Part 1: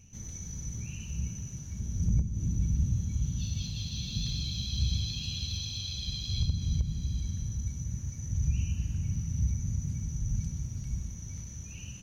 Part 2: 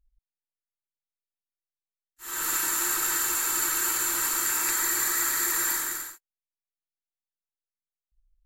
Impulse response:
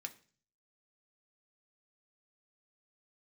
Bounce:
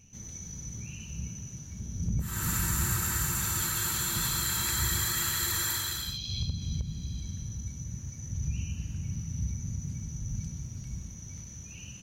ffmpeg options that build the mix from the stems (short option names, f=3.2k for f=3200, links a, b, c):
-filter_complex "[0:a]lowshelf=f=94:g=-9,volume=1dB[a];[1:a]aeval=exprs='clip(val(0),-1,0.119)':c=same,volume=-5dB[b];[a][b]amix=inputs=2:normalize=0"